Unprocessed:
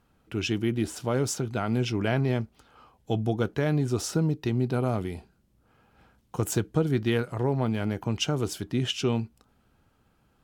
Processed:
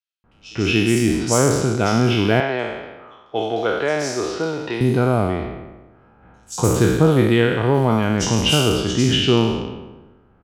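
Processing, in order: spectral sustain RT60 1.24 s; bands offset in time highs, lows 240 ms, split 4.3 kHz; level-controlled noise filter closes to 1.5 kHz, open at -21 dBFS; 2.40–4.81 s: three-band isolator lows -18 dB, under 380 Hz, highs -19 dB, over 6 kHz; trim +8 dB

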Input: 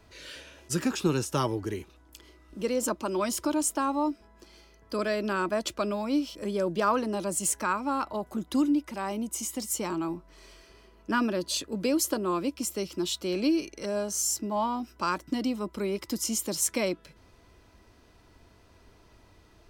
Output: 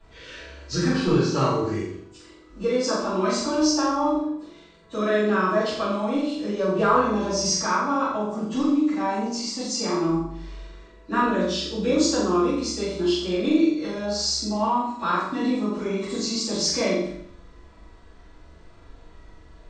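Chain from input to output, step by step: knee-point frequency compression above 2.4 kHz 1.5:1; flutter echo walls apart 7.3 m, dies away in 0.6 s; simulated room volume 52 m³, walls mixed, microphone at 2.5 m; trim -8.5 dB

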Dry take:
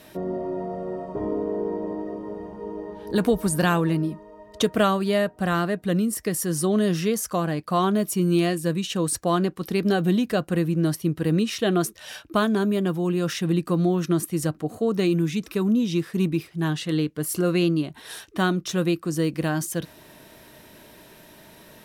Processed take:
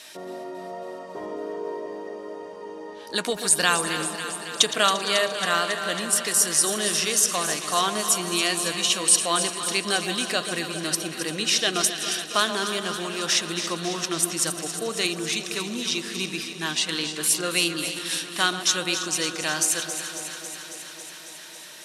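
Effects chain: backward echo that repeats 173 ms, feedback 64%, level -13.5 dB; frequency weighting ITU-R 468; echo whose repeats swap between lows and highs 137 ms, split 930 Hz, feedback 86%, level -9 dB

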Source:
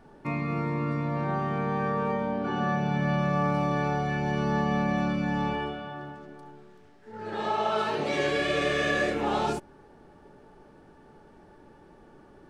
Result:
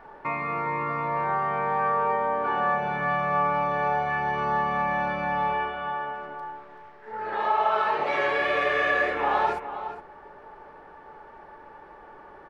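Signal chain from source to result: graphic EQ 125/250/500/1000/2000/8000 Hz -5/-6/+5/+12/+9/-10 dB; in parallel at +3 dB: compression, threshold -32 dBFS, peak gain reduction 17.5 dB; on the sum: echo from a far wall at 71 m, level -10 dB; trim -8 dB

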